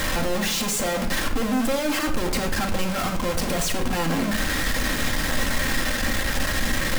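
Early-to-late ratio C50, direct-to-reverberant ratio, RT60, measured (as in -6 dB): 9.5 dB, 1.5 dB, 0.65 s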